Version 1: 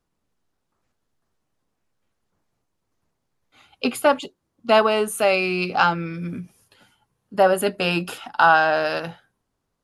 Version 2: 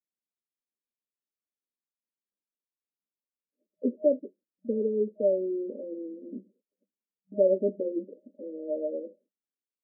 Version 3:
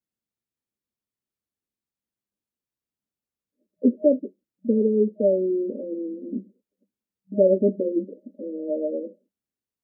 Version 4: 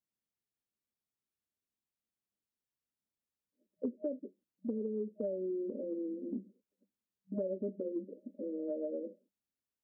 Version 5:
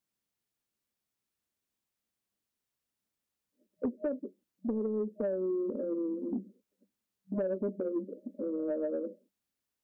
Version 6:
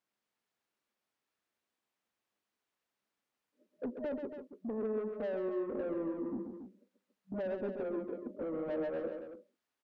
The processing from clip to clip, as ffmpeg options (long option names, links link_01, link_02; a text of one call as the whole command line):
ffmpeg -i in.wav -af "agate=range=-23dB:threshold=-51dB:ratio=16:detection=peak,afftfilt=real='re*between(b*sr/4096,190,620)':imag='im*between(b*sr/4096,190,620)':win_size=4096:overlap=0.75,volume=-4dB" out.wav
ffmpeg -i in.wav -af "equalizer=frequency=100:width=0.32:gain=15" out.wav
ffmpeg -i in.wav -af "acompressor=threshold=-29dB:ratio=6,volume=-5.5dB" out.wav
ffmpeg -i in.wav -af "asoftclip=type=tanh:threshold=-29dB,volume=5.5dB" out.wav
ffmpeg -i in.wav -filter_complex "[0:a]asplit=2[link_01][link_02];[link_02]highpass=frequency=720:poles=1,volume=21dB,asoftclip=type=tanh:threshold=-23.5dB[link_03];[link_01][link_03]amix=inputs=2:normalize=0,lowpass=frequency=1400:poles=1,volume=-6dB,aecho=1:1:134.1|279.9:0.447|0.316,volume=-7dB" out.wav